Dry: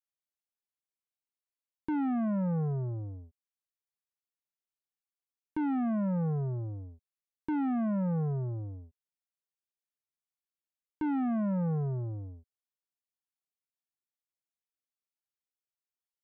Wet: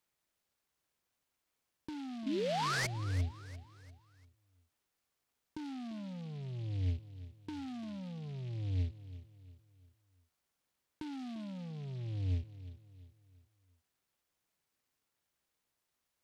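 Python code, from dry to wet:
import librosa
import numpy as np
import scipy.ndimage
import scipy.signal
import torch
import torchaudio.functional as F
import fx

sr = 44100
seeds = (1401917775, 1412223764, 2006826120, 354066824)

p1 = scipy.signal.sosfilt(scipy.signal.butter(2, 57.0, 'highpass', fs=sr, output='sos'), x)
p2 = fx.low_shelf(p1, sr, hz=95.0, db=10.0)
p3 = fx.over_compress(p2, sr, threshold_db=-41.0, ratio=-1.0)
p4 = fx.spec_paint(p3, sr, seeds[0], shape='rise', start_s=2.26, length_s=0.61, low_hz=250.0, high_hz=2300.0, level_db=-35.0)
p5 = p4 + fx.echo_feedback(p4, sr, ms=346, feedback_pct=40, wet_db=-15, dry=0)
p6 = fx.noise_mod_delay(p5, sr, seeds[1], noise_hz=2900.0, depth_ms=0.067)
y = p6 * librosa.db_to_amplitude(1.0)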